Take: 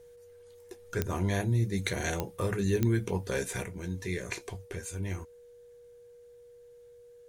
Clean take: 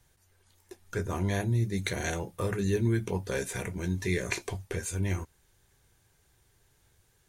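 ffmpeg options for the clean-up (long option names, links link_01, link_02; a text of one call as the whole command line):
ffmpeg -i in.wav -af "adeclick=threshold=4,bandreject=frequency=480:width=30,asetnsamples=nb_out_samples=441:pad=0,asendcmd='3.64 volume volume 5dB',volume=0dB" out.wav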